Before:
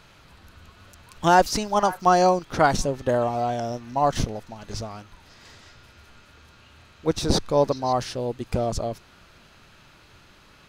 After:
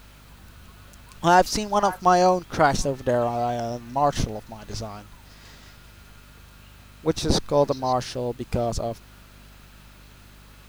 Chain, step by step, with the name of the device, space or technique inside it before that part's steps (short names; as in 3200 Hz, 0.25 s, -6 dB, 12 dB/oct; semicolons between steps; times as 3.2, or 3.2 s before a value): video cassette with head-switching buzz (buzz 50 Hz, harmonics 5, -50 dBFS -6 dB/oct; white noise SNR 34 dB)